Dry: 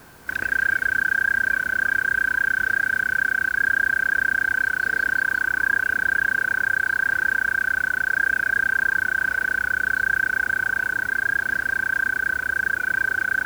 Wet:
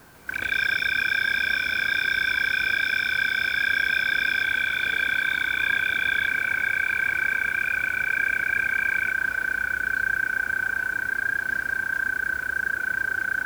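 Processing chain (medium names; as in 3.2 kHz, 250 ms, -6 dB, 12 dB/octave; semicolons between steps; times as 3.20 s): ever faster or slower copies 145 ms, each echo +7 st, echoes 3, each echo -6 dB; echo that smears into a reverb 761 ms, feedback 66%, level -15 dB; trim -3.5 dB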